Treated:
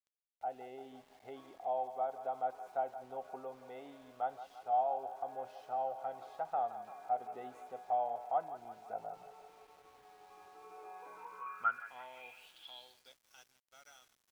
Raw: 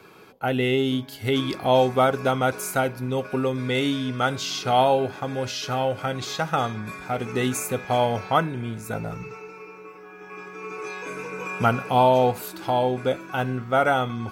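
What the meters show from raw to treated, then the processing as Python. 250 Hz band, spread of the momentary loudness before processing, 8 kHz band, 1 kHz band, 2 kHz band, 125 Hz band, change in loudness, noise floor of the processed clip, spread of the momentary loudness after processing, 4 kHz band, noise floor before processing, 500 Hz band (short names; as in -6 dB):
-31.5 dB, 15 LU, under -30 dB, -12.5 dB, -21.5 dB, under -35 dB, -15.5 dB, -78 dBFS, 19 LU, under -25 dB, -44 dBFS, -19.0 dB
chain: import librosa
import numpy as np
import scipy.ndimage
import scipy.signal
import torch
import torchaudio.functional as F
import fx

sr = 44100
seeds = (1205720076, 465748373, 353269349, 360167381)

p1 = fx.peak_eq(x, sr, hz=86.0, db=-6.0, octaves=0.48)
p2 = fx.rider(p1, sr, range_db=4, speed_s=0.5)
p3 = p2 + fx.echo_thinned(p2, sr, ms=170, feedback_pct=70, hz=480.0, wet_db=-11.5, dry=0)
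p4 = fx.filter_sweep_bandpass(p3, sr, from_hz=730.0, to_hz=5700.0, start_s=10.97, end_s=13.23, q=7.8)
p5 = np.where(np.abs(p4) >= 10.0 ** (-55.5 / 20.0), p4, 0.0)
y = p5 * 10.0 ** (-6.0 / 20.0)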